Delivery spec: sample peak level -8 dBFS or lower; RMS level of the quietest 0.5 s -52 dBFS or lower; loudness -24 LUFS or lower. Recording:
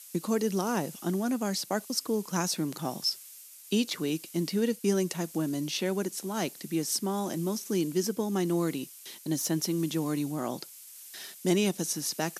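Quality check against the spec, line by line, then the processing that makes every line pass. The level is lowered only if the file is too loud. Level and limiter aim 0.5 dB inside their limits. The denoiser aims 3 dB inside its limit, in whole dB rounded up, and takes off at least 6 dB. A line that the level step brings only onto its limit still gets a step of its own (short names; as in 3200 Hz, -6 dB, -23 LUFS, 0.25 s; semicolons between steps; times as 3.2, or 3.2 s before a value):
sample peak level -12.5 dBFS: OK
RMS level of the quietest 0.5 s -49 dBFS: fail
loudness -30.5 LUFS: OK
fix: denoiser 6 dB, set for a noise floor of -49 dBFS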